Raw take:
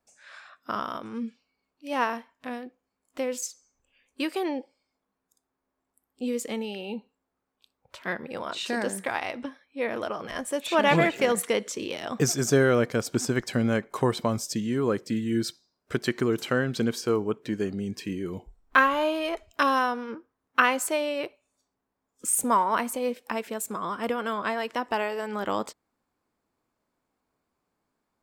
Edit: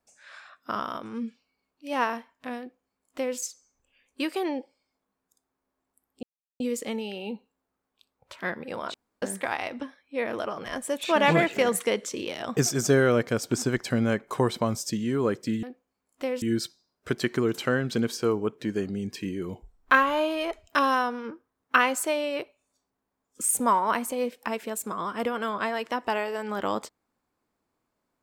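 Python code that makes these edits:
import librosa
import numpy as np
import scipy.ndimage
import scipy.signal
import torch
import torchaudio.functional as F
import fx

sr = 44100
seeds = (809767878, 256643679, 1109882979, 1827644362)

y = fx.edit(x, sr, fx.duplicate(start_s=2.59, length_s=0.79, to_s=15.26),
    fx.insert_silence(at_s=6.23, length_s=0.37),
    fx.room_tone_fill(start_s=8.57, length_s=0.28), tone=tone)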